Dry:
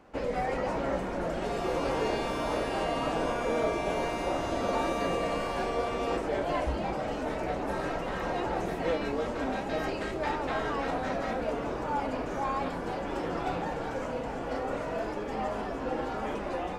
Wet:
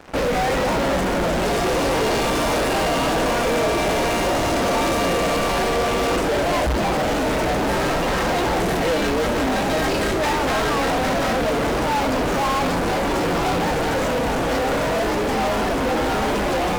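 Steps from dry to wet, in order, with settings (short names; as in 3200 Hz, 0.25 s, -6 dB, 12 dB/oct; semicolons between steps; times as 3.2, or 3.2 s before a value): tone controls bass +2 dB, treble +4 dB; in parallel at -6 dB: fuzz box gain 44 dB, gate -53 dBFS; on the sum: gain -2 dB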